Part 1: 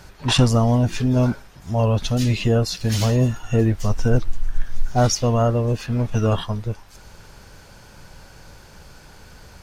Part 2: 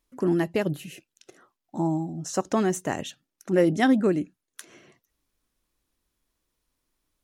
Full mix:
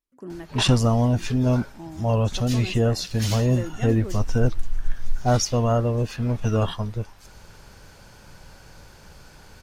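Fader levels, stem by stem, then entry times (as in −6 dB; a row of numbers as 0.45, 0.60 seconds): −2.5, −13.5 decibels; 0.30, 0.00 seconds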